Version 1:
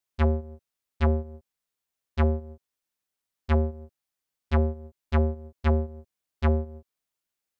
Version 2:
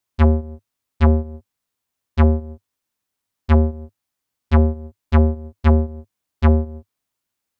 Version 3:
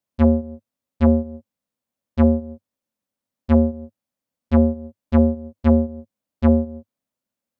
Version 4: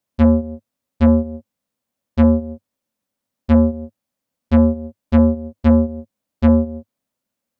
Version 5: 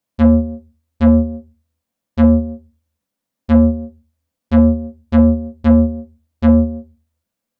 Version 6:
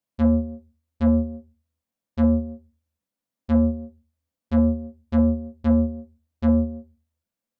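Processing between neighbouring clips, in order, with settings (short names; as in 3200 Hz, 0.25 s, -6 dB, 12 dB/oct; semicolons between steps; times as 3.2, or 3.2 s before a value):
fifteen-band EQ 100 Hz +8 dB, 250 Hz +5 dB, 1000 Hz +3 dB; gain +5 dB
small resonant body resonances 220/540 Hz, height 13 dB, ringing for 25 ms; gain -8 dB
soft clip -8 dBFS, distortion -15 dB; gain +5 dB
reverb RT60 0.25 s, pre-delay 4 ms, DRR 8 dB
dynamic EQ 2700 Hz, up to -6 dB, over -41 dBFS, Q 0.96; gain -8 dB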